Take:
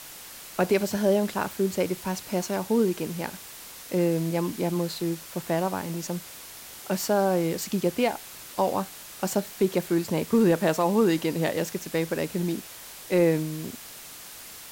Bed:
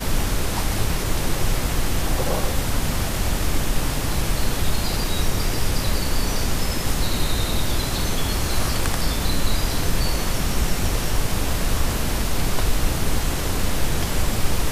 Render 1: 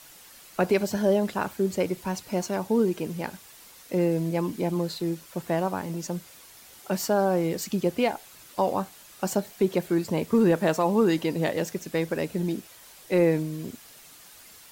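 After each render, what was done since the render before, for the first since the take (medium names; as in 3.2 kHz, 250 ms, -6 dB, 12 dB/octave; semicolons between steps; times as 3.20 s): noise reduction 8 dB, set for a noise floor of -43 dBFS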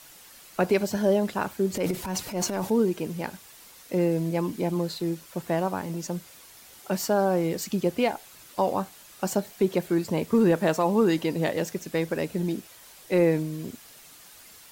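1.74–2.70 s: transient shaper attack -7 dB, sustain +9 dB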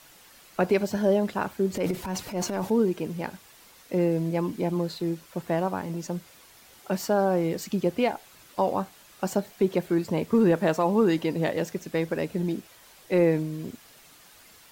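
peaking EQ 11 kHz -5.5 dB 2.1 oct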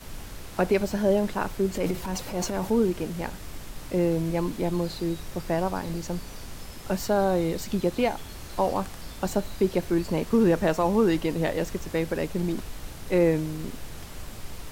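add bed -18 dB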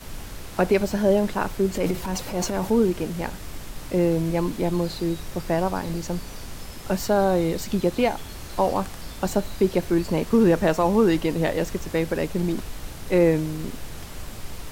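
trim +3 dB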